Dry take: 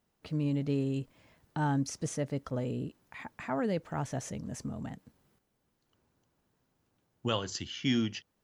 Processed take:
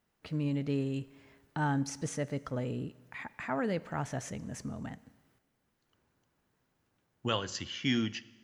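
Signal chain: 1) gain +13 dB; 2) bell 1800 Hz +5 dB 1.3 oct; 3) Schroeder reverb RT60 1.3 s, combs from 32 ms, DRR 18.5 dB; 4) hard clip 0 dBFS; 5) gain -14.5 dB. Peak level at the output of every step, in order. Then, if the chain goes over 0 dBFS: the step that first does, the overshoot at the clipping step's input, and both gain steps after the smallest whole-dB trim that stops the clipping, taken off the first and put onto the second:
-5.0, -3.0, -3.0, -3.0, -17.5 dBFS; no overload

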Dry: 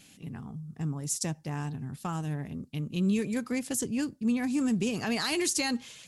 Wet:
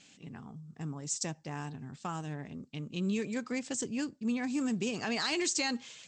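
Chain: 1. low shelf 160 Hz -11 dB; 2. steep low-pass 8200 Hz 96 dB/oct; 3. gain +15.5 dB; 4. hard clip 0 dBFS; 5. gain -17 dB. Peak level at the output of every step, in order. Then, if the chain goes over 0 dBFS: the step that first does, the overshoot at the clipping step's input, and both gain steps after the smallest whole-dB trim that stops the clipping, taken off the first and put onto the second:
-16.0, -18.0, -2.5, -2.5, -19.5 dBFS; no overload

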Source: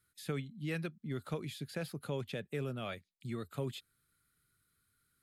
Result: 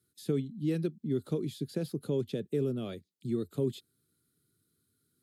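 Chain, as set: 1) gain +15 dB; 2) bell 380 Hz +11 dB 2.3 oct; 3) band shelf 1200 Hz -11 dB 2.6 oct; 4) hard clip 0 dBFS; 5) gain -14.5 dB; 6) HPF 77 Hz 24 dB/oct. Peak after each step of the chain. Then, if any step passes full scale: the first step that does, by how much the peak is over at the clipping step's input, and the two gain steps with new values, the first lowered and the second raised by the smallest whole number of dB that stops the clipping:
-9.5, -2.0, -3.5, -3.5, -18.0, -18.0 dBFS; no overload

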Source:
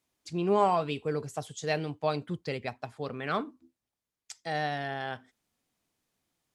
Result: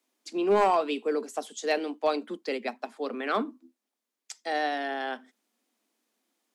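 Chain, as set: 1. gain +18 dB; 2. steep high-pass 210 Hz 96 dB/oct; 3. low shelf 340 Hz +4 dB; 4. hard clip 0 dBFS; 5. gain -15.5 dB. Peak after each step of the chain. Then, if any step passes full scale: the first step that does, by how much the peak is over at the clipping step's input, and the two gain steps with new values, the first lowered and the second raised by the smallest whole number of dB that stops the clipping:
+5.5, +6.0, +7.0, 0.0, -15.5 dBFS; step 1, 7.0 dB; step 1 +11 dB, step 5 -8.5 dB

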